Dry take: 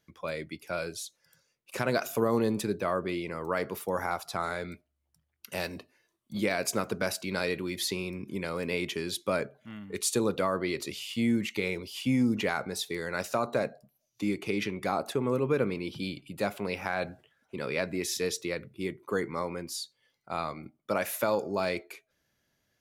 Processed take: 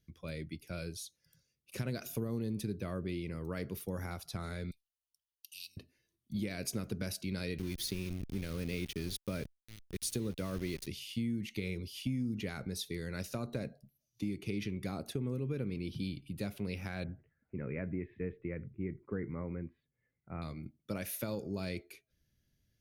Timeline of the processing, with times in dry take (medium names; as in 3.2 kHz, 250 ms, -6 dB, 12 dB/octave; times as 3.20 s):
4.71–5.77 s: elliptic high-pass 2.8 kHz
7.58–10.87 s: small samples zeroed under -36 dBFS
17.04–20.42 s: steep low-pass 2.2 kHz 48 dB/octave
whole clip: amplifier tone stack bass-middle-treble 10-0-1; band-stop 7.5 kHz, Q 5.1; compression 6:1, threshold -48 dBFS; trim +16 dB